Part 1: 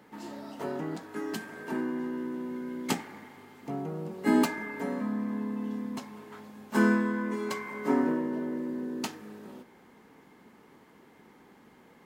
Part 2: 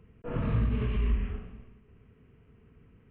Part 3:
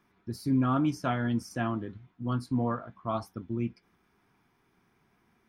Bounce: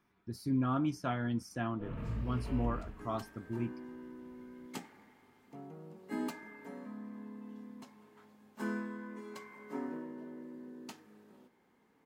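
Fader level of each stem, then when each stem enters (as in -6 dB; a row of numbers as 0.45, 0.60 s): -14.0, -11.0, -5.5 dB; 1.85, 1.55, 0.00 s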